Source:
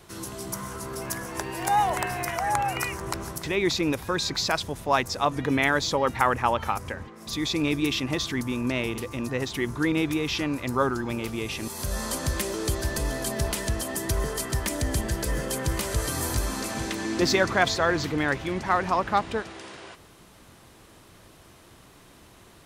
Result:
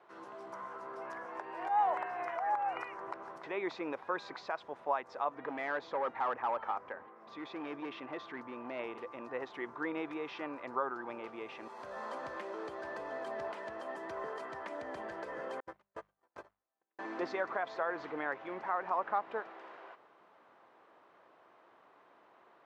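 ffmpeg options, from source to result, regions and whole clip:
-filter_complex "[0:a]asettb=1/sr,asplit=3[a][b][c];[a]atrim=end=5.344[d];[b]atrim=start=5.34:end=8.79,asetpts=PTS-STARTPTS,afade=t=in:d=0.004:c=qsin,afade=t=out:st=3.446:d=0.004:c=qsin,lowpass=f=3.6k:p=1,asoftclip=type=hard:threshold=-23dB[e];[c]atrim=start=8.786[f];[d][e]acrossfade=d=0.004:c1=hsin:c2=qsin[g];[g][f]acrossfade=d=0.004:c1=qsin:c2=hsin,asettb=1/sr,asplit=3[h][i][j];[h]atrim=end=15.604[k];[i]atrim=start=15.6:end=16.99,asetpts=PTS-STARTPTS,afade=t=in:d=0.004:c=qsin,afade=t=out:st=1.386:d=0.004:c=qsin,agate=range=-52dB:threshold=-24dB:ratio=16:release=100:detection=peak,bandreject=f=50:t=h:w=6,bandreject=f=100:t=h:w=6,bandreject=f=150:t=h:w=6,bandreject=f=200:t=h:w=6,acrusher=bits=7:mode=log:mix=0:aa=0.000001[l];[j]atrim=start=16.986[m];[k][l]acrossfade=d=0.004:c1=hsin:c2=qsin[n];[n][m]acrossfade=d=0.004:c1=qsin:c2=hsin,highpass=650,alimiter=limit=-17.5dB:level=0:latency=1:release=195,lowpass=1.2k,volume=-2dB"

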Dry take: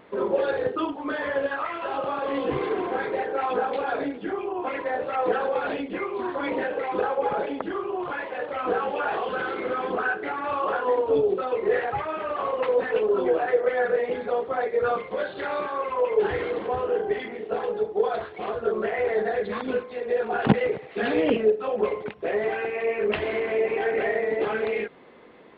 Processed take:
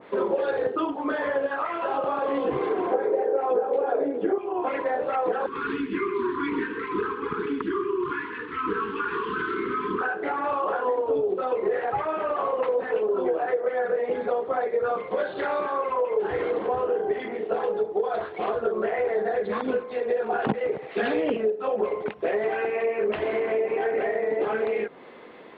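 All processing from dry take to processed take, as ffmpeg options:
-filter_complex "[0:a]asettb=1/sr,asplit=3[a][b][c];[a]atrim=end=2.934[d];[b]atrim=start=2.93:end=4.38,asetpts=PTS-STARTPTS,afade=t=in:d=0.004:c=qsin,afade=t=out:st=1.446:d=0.004:c=qsin,lowpass=f=3.3k:p=1,equalizer=f=460:w=1.1:g=13.5[e];[c]atrim=start=4.376[f];[d][e]acrossfade=d=0.004:c1=hsin:c2=qsin[g];[g][f]acrossfade=d=0.004:c1=qsin:c2=hsin,asettb=1/sr,asplit=3[h][i][j];[h]atrim=end=5.464[k];[i]atrim=start=5.46:end=10.01,asetpts=PTS-STARTPTS,afade=t=in:d=0.004:c=qsin,afade=t=out:st=4.546:d=0.004:c=qsin,asuperstop=centerf=650:order=12:qfactor=1.2,lowshelf=f=130:g=6.5,aecho=1:1:129:0.299,atrim=end_sample=200655[l];[j]atrim=start=10.006[m];[k][l]acrossfade=d=0.004:c1=hsin:c2=qsin[n];[n][m]acrossfade=d=0.004:c1=qsin:c2=hsin,lowshelf=f=150:g=-10,acompressor=threshold=-27dB:ratio=6,adynamicequalizer=threshold=0.00501:dfrequency=1600:dqfactor=0.7:tfrequency=1600:tqfactor=0.7:attack=5:release=100:ratio=0.375:range=4:mode=cutabove:tftype=highshelf,volume=5.5dB"

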